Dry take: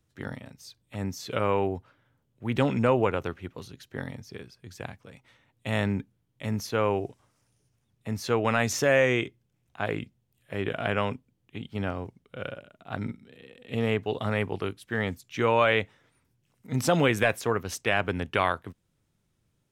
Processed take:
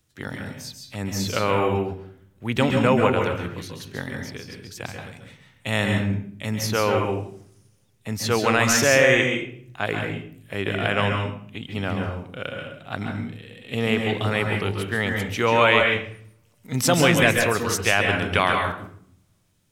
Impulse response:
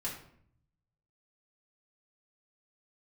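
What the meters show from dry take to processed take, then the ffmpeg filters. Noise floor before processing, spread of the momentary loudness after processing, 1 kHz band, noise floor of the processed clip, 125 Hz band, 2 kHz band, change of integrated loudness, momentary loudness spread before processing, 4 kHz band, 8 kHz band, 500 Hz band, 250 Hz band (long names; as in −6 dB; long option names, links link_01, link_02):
−74 dBFS, 18 LU, +5.5 dB, −60 dBFS, +5.5 dB, +8.0 dB, +6.0 dB, 19 LU, +10.0 dB, +11.5 dB, +4.5 dB, +5.5 dB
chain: -filter_complex "[0:a]highshelf=frequency=2000:gain=8.5,asplit=2[link_01][link_02];[1:a]atrim=start_sample=2205,asetrate=48510,aresample=44100,adelay=134[link_03];[link_02][link_03]afir=irnorm=-1:irlink=0,volume=-3.5dB[link_04];[link_01][link_04]amix=inputs=2:normalize=0,volume=2dB"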